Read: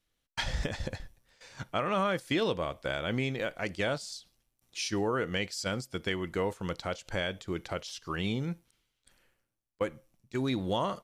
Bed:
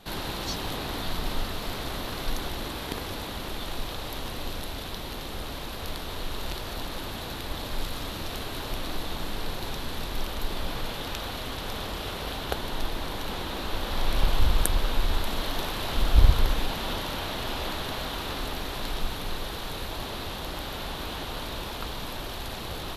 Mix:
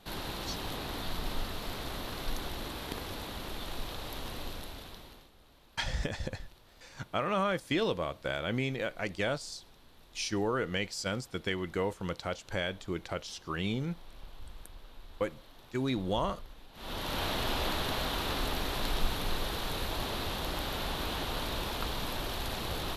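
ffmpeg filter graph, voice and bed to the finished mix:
ffmpeg -i stem1.wav -i stem2.wav -filter_complex "[0:a]adelay=5400,volume=-1dB[link_01];[1:a]volume=19.5dB,afade=type=out:start_time=4.37:duration=0.94:silence=0.1,afade=type=in:start_time=16.73:duration=0.5:silence=0.0562341[link_02];[link_01][link_02]amix=inputs=2:normalize=0" out.wav

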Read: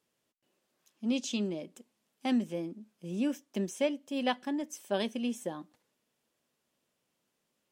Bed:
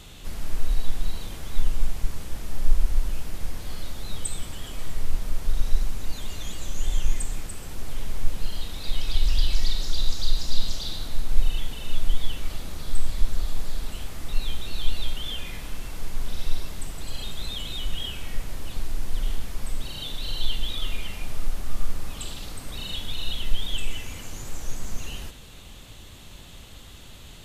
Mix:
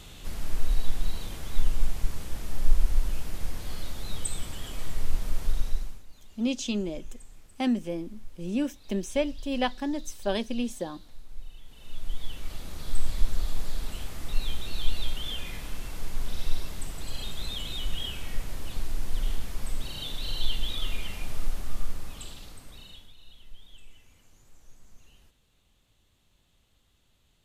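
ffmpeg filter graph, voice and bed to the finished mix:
ffmpeg -i stem1.wav -i stem2.wav -filter_complex "[0:a]adelay=5350,volume=3dB[link_01];[1:a]volume=17dB,afade=type=out:start_time=5.44:duration=0.6:silence=0.112202,afade=type=in:start_time=11.63:duration=1.44:silence=0.11885,afade=type=out:start_time=21.43:duration=1.71:silence=0.0891251[link_02];[link_01][link_02]amix=inputs=2:normalize=0" out.wav

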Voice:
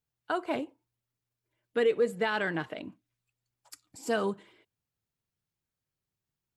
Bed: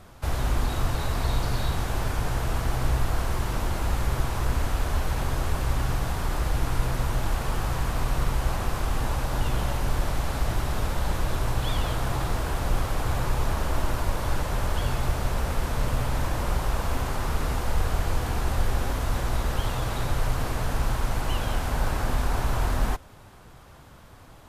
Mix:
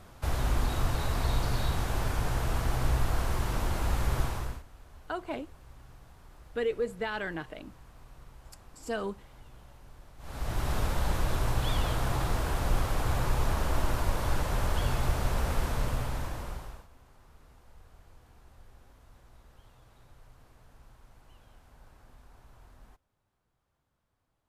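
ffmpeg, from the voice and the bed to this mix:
ffmpeg -i stem1.wav -i stem2.wav -filter_complex "[0:a]adelay=4800,volume=-4.5dB[link_01];[1:a]volume=21dB,afade=type=out:start_time=4.22:duration=0.41:silence=0.0668344,afade=type=in:start_time=10.18:duration=0.53:silence=0.0630957,afade=type=out:start_time=15.59:duration=1.28:silence=0.0398107[link_02];[link_01][link_02]amix=inputs=2:normalize=0" out.wav

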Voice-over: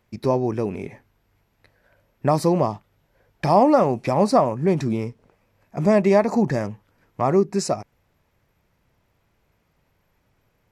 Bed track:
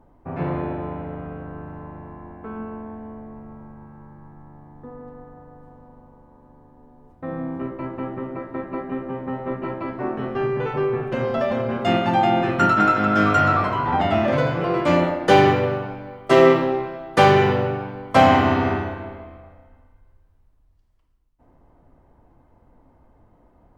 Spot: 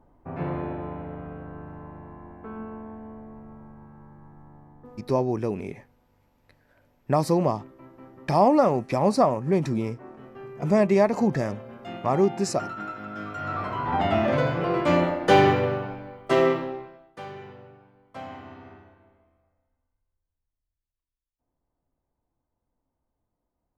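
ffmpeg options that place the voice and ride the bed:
ffmpeg -i stem1.wav -i stem2.wav -filter_complex "[0:a]adelay=4850,volume=-3dB[link_01];[1:a]volume=10.5dB,afade=type=out:start_time=4.56:duration=0.81:silence=0.211349,afade=type=in:start_time=13.37:duration=0.7:silence=0.177828,afade=type=out:start_time=15.9:duration=1.24:silence=0.0749894[link_02];[link_01][link_02]amix=inputs=2:normalize=0" out.wav

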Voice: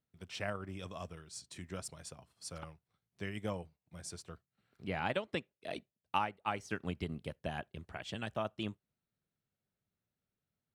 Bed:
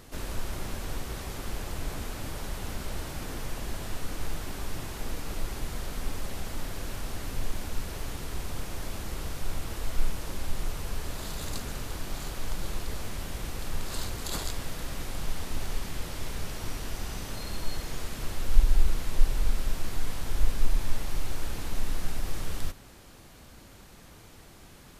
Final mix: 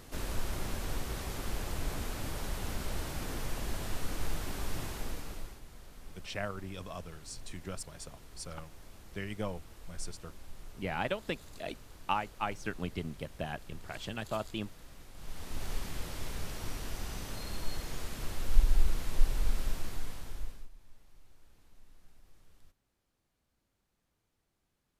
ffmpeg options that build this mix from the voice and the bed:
ffmpeg -i stem1.wav -i stem2.wav -filter_complex "[0:a]adelay=5950,volume=1.5dB[link_01];[1:a]volume=11.5dB,afade=type=out:start_time=4.85:duration=0.75:silence=0.16788,afade=type=in:start_time=15.14:duration=0.58:silence=0.223872,afade=type=out:start_time=19.67:duration=1.02:silence=0.0530884[link_02];[link_01][link_02]amix=inputs=2:normalize=0" out.wav

